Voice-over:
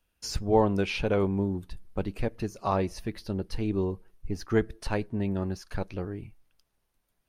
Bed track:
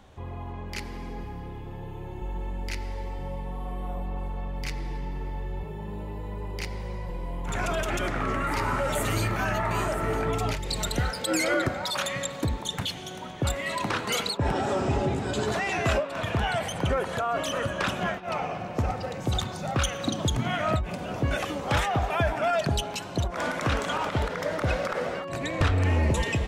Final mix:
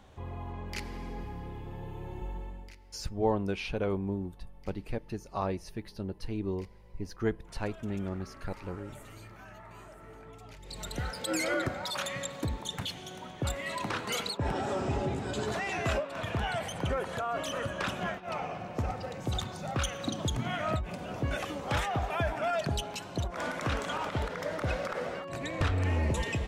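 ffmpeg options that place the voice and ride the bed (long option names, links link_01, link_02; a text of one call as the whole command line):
ffmpeg -i stem1.wav -i stem2.wav -filter_complex "[0:a]adelay=2700,volume=-5.5dB[link_01];[1:a]volume=14dB,afade=type=out:start_time=2.17:duration=0.59:silence=0.105925,afade=type=in:start_time=10.49:duration=0.77:silence=0.141254[link_02];[link_01][link_02]amix=inputs=2:normalize=0" out.wav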